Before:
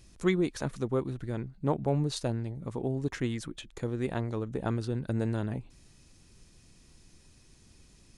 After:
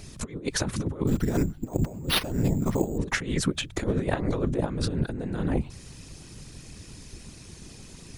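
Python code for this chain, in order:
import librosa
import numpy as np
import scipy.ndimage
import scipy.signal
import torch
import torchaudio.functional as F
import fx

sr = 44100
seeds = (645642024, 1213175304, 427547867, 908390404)

y = fx.over_compress(x, sr, threshold_db=-35.0, ratio=-0.5)
y = fx.whisperise(y, sr, seeds[0])
y = fx.resample_bad(y, sr, factor=6, down='none', up='hold', at=(1.07, 2.98))
y = y * 10.0 ** (9.0 / 20.0)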